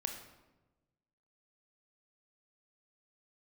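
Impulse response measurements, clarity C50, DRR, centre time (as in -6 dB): 6.5 dB, 4.0 dB, 26 ms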